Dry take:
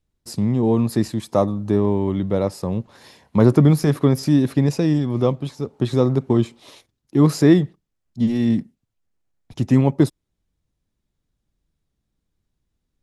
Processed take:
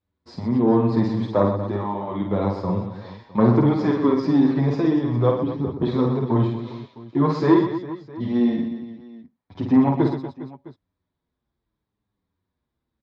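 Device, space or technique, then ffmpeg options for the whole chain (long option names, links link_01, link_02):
barber-pole flanger into a guitar amplifier: -filter_complex "[0:a]asettb=1/sr,asplit=3[link_01][link_02][link_03];[link_01]atrim=end=5.414[link_04];[link_02]atrim=start=5.41:end=5.82,asetpts=PTS-STARTPTS,afade=type=in:duration=0.004:curve=qsin,afade=type=out:start_time=0.406:duration=0.004:curve=qsin,aemphasis=mode=reproduction:type=riaa[link_05];[link_03]atrim=start=5.816[link_06];[link_04][link_05]acrossfade=duration=0.004:curve1=hsin:curve2=qsin[link_07];[link_07][link_06]acrossfade=duration=0.004:curve1=qsin:curve2=hsin,asplit=2[link_08][link_09];[link_09]adelay=7.6,afreqshift=-0.74[link_10];[link_08][link_10]amix=inputs=2:normalize=1,asoftclip=type=tanh:threshold=-10.5dB,lowpass=8600,highpass=76,equalizer=frequency=150:width_type=q:width=4:gain=-7,equalizer=frequency=1000:width_type=q:width=4:gain=7,equalizer=frequency=2800:width_type=q:width=4:gain=-8,lowpass=frequency=4000:width=0.5412,lowpass=frequency=4000:width=1.3066,aecho=1:1:50|125|237.5|406.2|659.4:0.631|0.398|0.251|0.158|0.1,volume=1.5dB"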